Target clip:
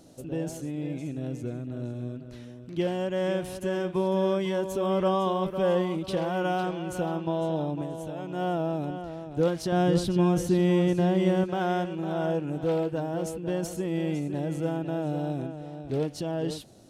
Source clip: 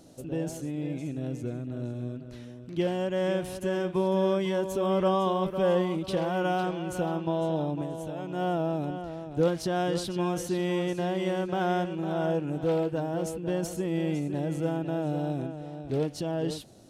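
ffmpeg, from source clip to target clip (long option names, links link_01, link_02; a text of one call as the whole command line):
ffmpeg -i in.wav -filter_complex "[0:a]asettb=1/sr,asplit=3[link_01][link_02][link_03];[link_01]atrim=end=9.724[link_04];[link_02]atrim=start=9.72:end=11.44,asetpts=PTS-STARTPTS,afade=type=in:duration=0.004:curve=qsin,afade=type=out:start_time=1.716:duration=0.004:curve=qsin,lowshelf=frequency=300:gain=11.5[link_05];[link_03]atrim=start=11.436[link_06];[link_04][link_05]acrossfade=duration=0.004:curve1=hsin:curve2=qsin[link_07];[link_07][link_06]acrossfade=duration=0.004:curve1=qsin:curve2=hsin" out.wav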